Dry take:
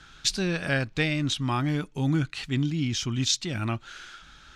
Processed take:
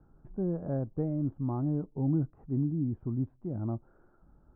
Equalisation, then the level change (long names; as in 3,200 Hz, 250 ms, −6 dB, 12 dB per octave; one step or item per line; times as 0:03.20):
Bessel low-pass filter 540 Hz, order 6
high-frequency loss of the air 260 metres
low-shelf EQ 200 Hz −5 dB
0.0 dB